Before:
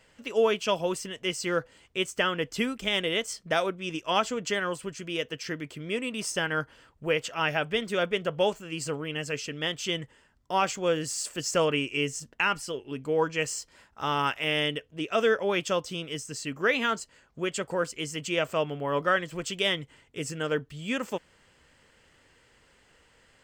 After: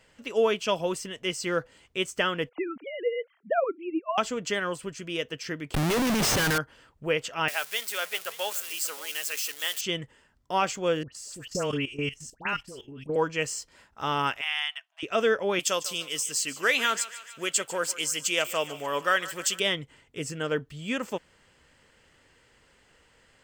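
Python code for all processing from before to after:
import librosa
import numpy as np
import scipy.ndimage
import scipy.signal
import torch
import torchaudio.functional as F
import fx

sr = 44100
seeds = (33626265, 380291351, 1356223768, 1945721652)

y = fx.chain(x, sr, fx.sine_speech(),
    fx.gaussian_blur(sigma=4.4), at=(2.49, 4.18))
y = fx.chain(y, sr, fx.air_absorb(metres=77.0),
    fx.leveller(passes=3),
    fx.schmitt(flips_db=-32.0), at=(5.74, 6.58))
y = fx.chain(y, sr, fx.crossing_spikes(level_db=-25.5),
    fx.highpass(hz=920.0, slope=12),
    fx.echo_single(ms=577, db=-18.0), at=(7.48, 9.81))
y = fx.chain(y, sr, fx.low_shelf(hz=170.0, db=8.5),
    fx.dispersion(late='highs', ms=97.0, hz=1700.0),
    fx.level_steps(step_db=14), at=(11.03, 13.16))
y = fx.chain(y, sr, fx.brickwall_highpass(low_hz=650.0),
    fx.high_shelf(hz=6500.0, db=-7.0), at=(14.41, 15.03))
y = fx.chain(y, sr, fx.riaa(side='recording'),
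    fx.echo_thinned(ms=147, feedback_pct=64, hz=610.0, wet_db=-15.5), at=(15.59, 19.6))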